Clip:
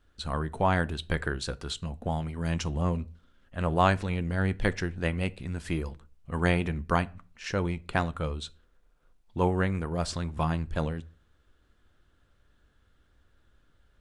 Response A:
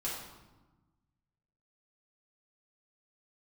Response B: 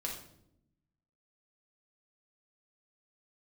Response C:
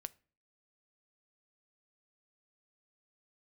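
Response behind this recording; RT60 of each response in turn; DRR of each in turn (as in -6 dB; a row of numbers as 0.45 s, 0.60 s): C; 1.2 s, 0.75 s, 0.40 s; -7.5 dB, -1.5 dB, 14.5 dB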